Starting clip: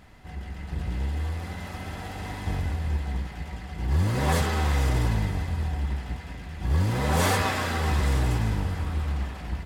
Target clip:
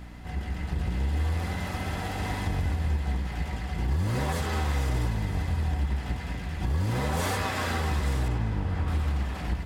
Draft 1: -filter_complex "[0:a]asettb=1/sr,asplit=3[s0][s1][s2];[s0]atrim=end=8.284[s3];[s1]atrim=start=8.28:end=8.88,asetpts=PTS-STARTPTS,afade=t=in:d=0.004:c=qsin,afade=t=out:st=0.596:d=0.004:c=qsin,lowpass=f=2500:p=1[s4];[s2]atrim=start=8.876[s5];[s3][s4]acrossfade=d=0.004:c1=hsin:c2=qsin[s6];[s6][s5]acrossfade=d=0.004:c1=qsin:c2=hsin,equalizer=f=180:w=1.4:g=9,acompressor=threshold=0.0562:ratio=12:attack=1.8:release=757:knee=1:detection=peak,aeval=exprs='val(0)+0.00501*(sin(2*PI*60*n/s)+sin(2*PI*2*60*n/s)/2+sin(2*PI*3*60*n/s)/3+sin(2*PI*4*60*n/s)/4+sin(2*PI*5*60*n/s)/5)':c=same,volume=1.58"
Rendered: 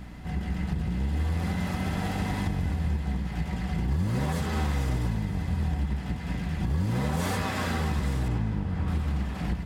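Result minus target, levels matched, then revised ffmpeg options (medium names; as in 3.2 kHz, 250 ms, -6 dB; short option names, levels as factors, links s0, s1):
250 Hz band +4.0 dB
-filter_complex "[0:a]asettb=1/sr,asplit=3[s0][s1][s2];[s0]atrim=end=8.284[s3];[s1]atrim=start=8.28:end=8.88,asetpts=PTS-STARTPTS,afade=t=in:d=0.004:c=qsin,afade=t=out:st=0.596:d=0.004:c=qsin,lowpass=f=2500:p=1[s4];[s2]atrim=start=8.876[s5];[s3][s4]acrossfade=d=0.004:c1=hsin:c2=qsin[s6];[s6][s5]acrossfade=d=0.004:c1=qsin:c2=hsin,acompressor=threshold=0.0562:ratio=12:attack=1.8:release=757:knee=1:detection=peak,aeval=exprs='val(0)+0.00501*(sin(2*PI*60*n/s)+sin(2*PI*2*60*n/s)/2+sin(2*PI*3*60*n/s)/3+sin(2*PI*4*60*n/s)/4+sin(2*PI*5*60*n/s)/5)':c=same,volume=1.58"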